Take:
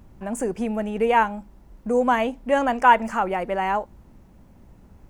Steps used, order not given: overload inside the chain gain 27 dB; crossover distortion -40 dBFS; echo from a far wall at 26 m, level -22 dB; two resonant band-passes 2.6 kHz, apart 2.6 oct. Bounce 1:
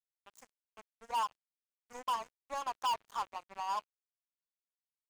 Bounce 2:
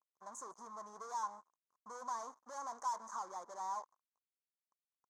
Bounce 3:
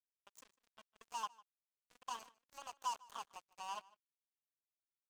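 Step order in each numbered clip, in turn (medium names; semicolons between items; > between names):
two resonant band-passes > overload inside the chain > echo from a far wall > crossover distortion; overload inside the chain > echo from a far wall > crossover distortion > two resonant band-passes; overload inside the chain > two resonant band-passes > crossover distortion > echo from a far wall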